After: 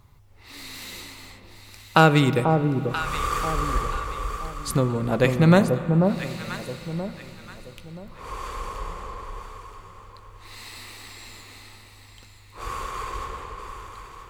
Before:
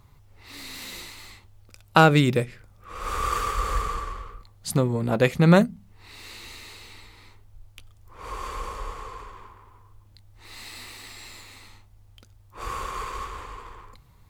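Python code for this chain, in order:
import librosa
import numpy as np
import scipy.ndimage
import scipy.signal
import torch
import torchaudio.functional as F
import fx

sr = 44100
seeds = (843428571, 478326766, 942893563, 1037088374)

y = fx.echo_alternate(x, sr, ms=489, hz=1000.0, feedback_pct=55, wet_db=-4.0)
y = fx.rev_spring(y, sr, rt60_s=3.1, pass_ms=(31, 38, 48), chirp_ms=80, drr_db=12.0)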